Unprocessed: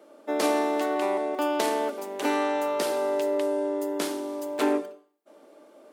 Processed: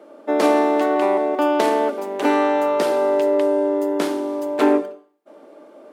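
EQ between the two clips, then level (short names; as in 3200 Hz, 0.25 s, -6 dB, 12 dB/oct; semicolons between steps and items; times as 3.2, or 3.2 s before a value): high shelf 3300 Hz -11 dB; +8.5 dB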